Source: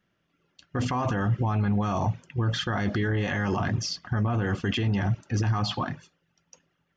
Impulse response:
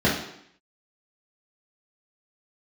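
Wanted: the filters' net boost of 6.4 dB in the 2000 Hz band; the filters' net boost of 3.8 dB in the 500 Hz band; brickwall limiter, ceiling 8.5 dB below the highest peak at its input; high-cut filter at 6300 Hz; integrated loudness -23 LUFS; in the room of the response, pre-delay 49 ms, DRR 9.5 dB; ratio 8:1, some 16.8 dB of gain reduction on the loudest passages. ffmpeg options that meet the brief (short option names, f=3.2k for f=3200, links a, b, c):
-filter_complex "[0:a]lowpass=6.3k,equalizer=f=500:t=o:g=4.5,equalizer=f=2k:t=o:g=8,acompressor=threshold=-39dB:ratio=8,alimiter=level_in=12dB:limit=-24dB:level=0:latency=1,volume=-12dB,asplit=2[a][b];[1:a]atrim=start_sample=2205,adelay=49[c];[b][c]afir=irnorm=-1:irlink=0,volume=-27dB[d];[a][d]amix=inputs=2:normalize=0,volume=20dB"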